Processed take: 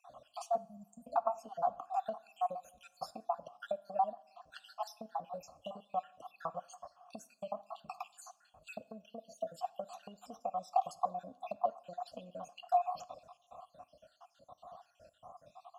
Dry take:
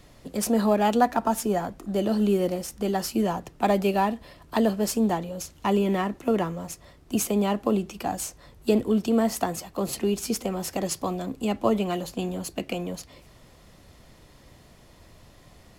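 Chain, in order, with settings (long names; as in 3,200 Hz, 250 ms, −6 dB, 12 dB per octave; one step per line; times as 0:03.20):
time-frequency cells dropped at random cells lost 67%
0:00.57–0:01.04: elliptic band-stop filter 180–7,500 Hz, stop band 40 dB
downward compressor 6 to 1, threshold −38 dBFS, peak gain reduction 18 dB
formant filter a
phaser with its sweep stopped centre 920 Hz, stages 4
coupled-rooms reverb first 0.5 s, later 2.2 s, from −18 dB, DRR 16 dB
level +17 dB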